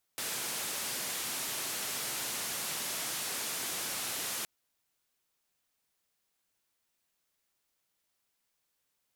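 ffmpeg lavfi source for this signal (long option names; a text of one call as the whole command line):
ffmpeg -f lavfi -i "anoisesrc=color=white:duration=4.27:sample_rate=44100:seed=1,highpass=frequency=120,lowpass=frequency=13000,volume=-29.3dB" out.wav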